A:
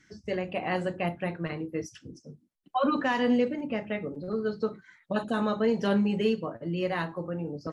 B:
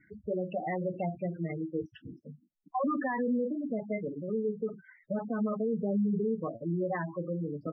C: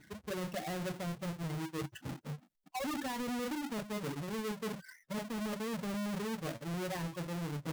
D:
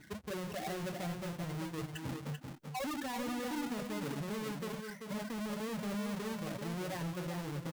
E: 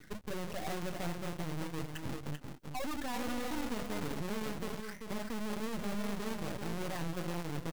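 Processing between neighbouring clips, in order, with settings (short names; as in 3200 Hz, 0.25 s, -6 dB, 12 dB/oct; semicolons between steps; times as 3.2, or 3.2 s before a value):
spectral gate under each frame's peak -10 dB strong; steep low-pass 3200 Hz 36 dB/oct; limiter -23.5 dBFS, peak gain reduction 7 dB
half-waves squared off; dynamic EQ 140 Hz, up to +8 dB, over -51 dBFS, Q 4.3; reverse; compressor 6:1, threshold -37 dBFS, peak gain reduction 13 dB; reverse
limiter -38 dBFS, peak gain reduction 10 dB; echo 0.388 s -6 dB; gain +3 dB
half-wave rectifier; gain +5 dB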